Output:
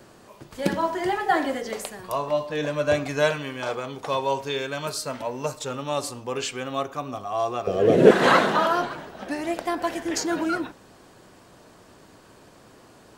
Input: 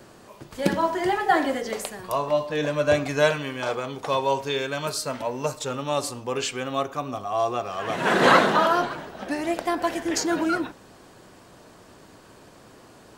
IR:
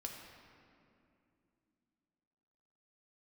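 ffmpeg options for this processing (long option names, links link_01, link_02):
-filter_complex "[0:a]asettb=1/sr,asplit=3[link_01][link_02][link_03];[link_01]atrim=end=7.674[link_04];[link_02]atrim=start=7.67:end=8.11,asetpts=PTS-STARTPTS,afade=type=in:duration=0.004:curve=qsin,afade=type=out:start_time=0.436:duration=0.004:curve=qsin,lowshelf=frequency=670:width_type=q:width=3:gain=12.5[link_05];[link_03]atrim=start=8.106[link_06];[link_04][link_05]acrossfade=duration=0.004:curve1=hsin:curve2=qsin[link_07];[link_07][link_06]acrossfade=duration=0.004:curve1=qsin:curve2=hsin,volume=-1.5dB"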